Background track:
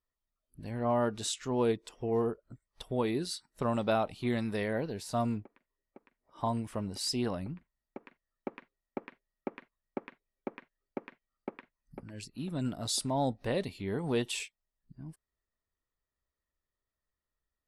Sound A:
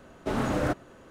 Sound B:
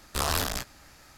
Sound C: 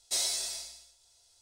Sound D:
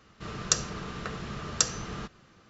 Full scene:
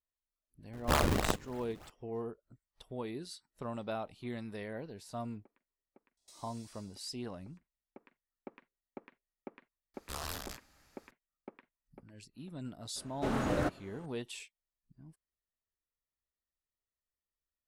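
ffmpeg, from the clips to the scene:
-filter_complex "[2:a]asplit=2[s0][s1];[0:a]volume=0.335[s2];[s0]acrusher=samples=37:mix=1:aa=0.000001:lfo=1:lforange=59.2:lforate=3.3[s3];[3:a]acompressor=threshold=0.0141:ratio=6:attack=3.2:release=140:knee=1:detection=peak[s4];[s3]atrim=end=1.17,asetpts=PTS-STARTPTS,volume=0.944,afade=t=in:d=0.004:c=hsin,afade=t=out:st=1.166:d=0.004:c=hsin,adelay=730[s5];[s4]atrim=end=1.41,asetpts=PTS-STARTPTS,volume=0.126,afade=t=in:d=0.004:c=hsin,afade=t=out:st=1.406:d=0.004:c=hsin,adelay=6170[s6];[s1]atrim=end=1.17,asetpts=PTS-STARTPTS,volume=0.211,afade=t=in:d=0.004:c=hsin,afade=t=out:st=1.166:d=0.004:c=hsin,adelay=438354S[s7];[1:a]atrim=end=1.1,asetpts=PTS-STARTPTS,volume=0.562,afade=t=in:d=0.004:c=hsin,afade=t=out:st=1.096:d=0.004:c=hsin,adelay=12960[s8];[s2][s5][s6][s7][s8]amix=inputs=5:normalize=0"

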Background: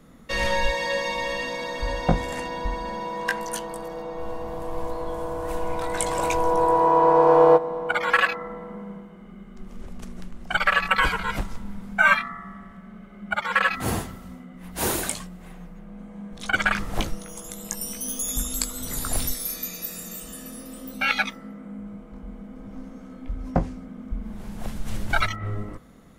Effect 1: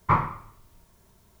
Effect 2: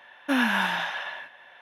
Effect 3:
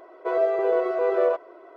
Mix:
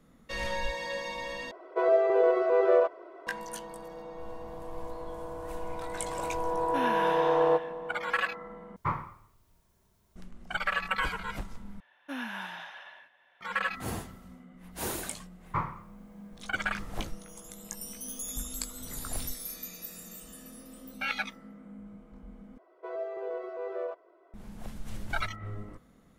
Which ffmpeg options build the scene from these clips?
-filter_complex "[3:a]asplit=2[s0][s1];[2:a]asplit=2[s2][s3];[1:a]asplit=2[s4][s5];[0:a]volume=0.335[s6];[s0]aresample=22050,aresample=44100[s7];[s6]asplit=5[s8][s9][s10][s11][s12];[s8]atrim=end=1.514[s13];[s7]atrim=end=1.76,asetpts=PTS-STARTPTS,volume=0.891[s14];[s9]atrim=start=3.266:end=8.764[s15];[s4]atrim=end=1.4,asetpts=PTS-STARTPTS,volume=0.335[s16];[s10]atrim=start=10.156:end=11.804[s17];[s3]atrim=end=1.61,asetpts=PTS-STARTPTS,volume=0.2[s18];[s11]atrim=start=13.406:end=22.584[s19];[s1]atrim=end=1.76,asetpts=PTS-STARTPTS,volume=0.2[s20];[s12]atrim=start=24.336[s21];[s2]atrim=end=1.61,asetpts=PTS-STARTPTS,volume=0.299,afade=t=in:d=0.004:c=hsin,afade=t=out:st=1.606:d=0.004:c=hsin,adelay=6450[s22];[s5]atrim=end=1.4,asetpts=PTS-STARTPTS,volume=0.316,afade=t=in:d=0.004:c=hsin,afade=t=out:st=1.396:d=0.004:c=hsin,adelay=15450[s23];[s13][s14]acrossfade=d=0.004:c1=hsin:c2=hsin[s24];[s24][s15]acrossfade=d=0.004:c1=hsin:c2=hsin[s25];[s25][s16]acrossfade=d=0.004:c1=hsin:c2=hsin[s26];[s26][s17]acrossfade=d=0.004:c1=hsin:c2=hsin[s27];[s27][s18]acrossfade=d=0.004:c1=hsin:c2=hsin[s28];[s28][s19]acrossfade=d=0.004:c1=hsin:c2=hsin[s29];[s29][s20]acrossfade=d=0.004:c1=hsin:c2=hsin[s30];[s30][s21]acrossfade=d=0.004:c1=hsin:c2=hsin[s31];[s31][s22][s23]amix=inputs=3:normalize=0"

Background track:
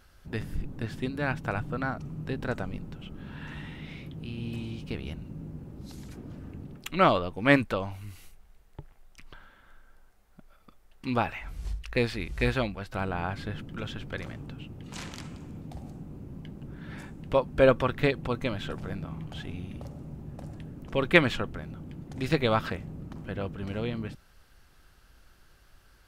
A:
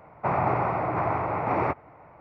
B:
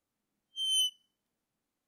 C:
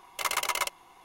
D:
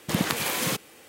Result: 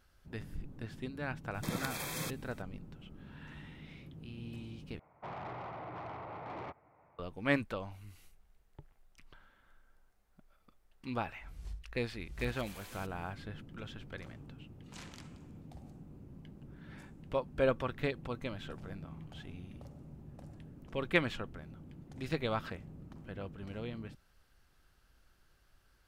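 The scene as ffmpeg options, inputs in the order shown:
-filter_complex "[4:a]asplit=2[s0][s1];[0:a]volume=0.335[s2];[s0]asuperstop=centerf=2900:order=20:qfactor=7.2[s3];[1:a]asoftclip=type=tanh:threshold=0.0631[s4];[s1]acompressor=threshold=0.0251:ratio=6:attack=3.2:release=140:knee=1:detection=peak[s5];[s2]asplit=2[s6][s7];[s6]atrim=end=4.994[s8];[s4]atrim=end=2.2,asetpts=PTS-STARTPTS,volume=0.178[s9];[s7]atrim=start=7.186[s10];[s3]atrim=end=1.08,asetpts=PTS-STARTPTS,volume=0.237,afade=t=in:d=0.004:c=hsin,afade=t=out:st=1.076:d=0.004:c=hsin,adelay=1540[s11];[s5]atrim=end=1.08,asetpts=PTS-STARTPTS,volume=0.15,afade=t=in:d=0.1,afade=t=out:st=0.98:d=0.1,adelay=12300[s12];[s8][s9]acrossfade=d=0.004:c1=hsin:c2=hsin[s13];[s13][s10]acrossfade=d=0.004:c1=hsin:c2=hsin[s14];[s14][s11][s12]amix=inputs=3:normalize=0"

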